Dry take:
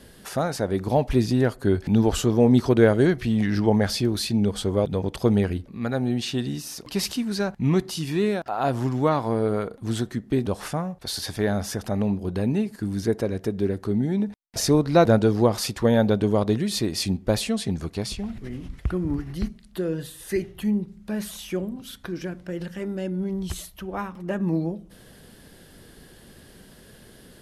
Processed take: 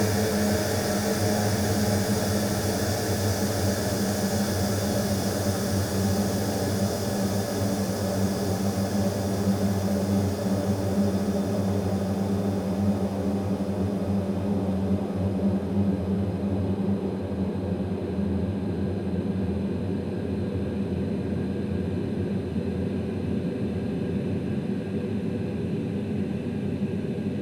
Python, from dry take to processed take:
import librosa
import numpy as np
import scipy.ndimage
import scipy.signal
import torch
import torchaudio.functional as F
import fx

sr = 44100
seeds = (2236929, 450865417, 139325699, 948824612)

p1 = fx.self_delay(x, sr, depth_ms=0.24)
p2 = fx.doppler_pass(p1, sr, speed_mps=14, closest_m=4.4, pass_at_s=11.18)
p3 = fx.level_steps(p2, sr, step_db=21)
p4 = p2 + (p3 * 10.0 ** (2.5 / 20.0))
p5 = fx.paulstretch(p4, sr, seeds[0], factor=29.0, window_s=1.0, from_s=11.19)
y = p5 * 10.0 ** (2.0 / 20.0)